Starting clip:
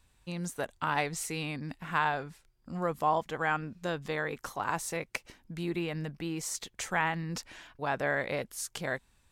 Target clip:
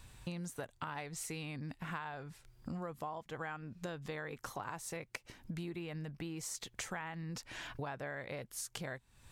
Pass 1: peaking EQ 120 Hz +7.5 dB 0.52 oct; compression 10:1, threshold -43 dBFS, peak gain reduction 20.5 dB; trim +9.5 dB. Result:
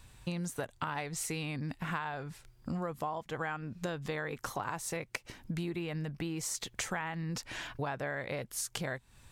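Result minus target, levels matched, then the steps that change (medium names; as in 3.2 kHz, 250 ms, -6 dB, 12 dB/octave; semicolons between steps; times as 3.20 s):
compression: peak gain reduction -6 dB
change: compression 10:1, threshold -49.5 dBFS, peak gain reduction 26.5 dB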